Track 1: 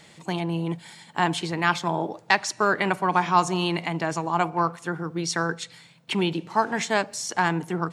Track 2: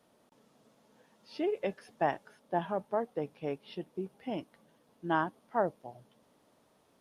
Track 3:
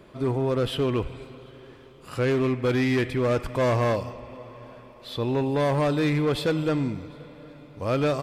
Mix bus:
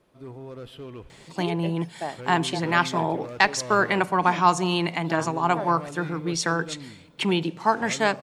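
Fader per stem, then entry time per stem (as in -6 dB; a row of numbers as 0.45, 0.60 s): +1.0, -2.5, -15.0 dB; 1.10, 0.00, 0.00 s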